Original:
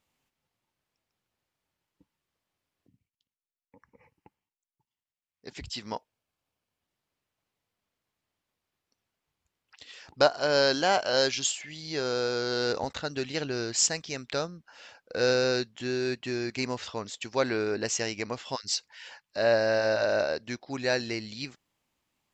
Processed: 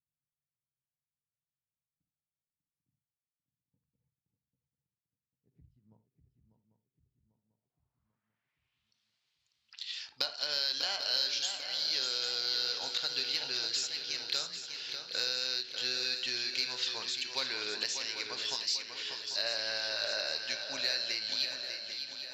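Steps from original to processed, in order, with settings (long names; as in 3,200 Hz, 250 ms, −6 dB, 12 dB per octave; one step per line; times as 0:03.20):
first-order pre-emphasis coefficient 0.97
downward compressor 4 to 1, threshold −44 dBFS, peak gain reduction 18.5 dB
low-pass filter sweep 140 Hz → 4,200 Hz, 0:06.54–0:09.03
in parallel at −4 dB: soft clipping −31 dBFS, distortion −18 dB
on the sum: feedback echo with a long and a short gap by turns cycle 794 ms, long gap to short 3 to 1, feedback 48%, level −7.5 dB
on a send at −9.5 dB: convolution reverb, pre-delay 3 ms
on the sum: every ending faded ahead of time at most 230 dB per second
level +5 dB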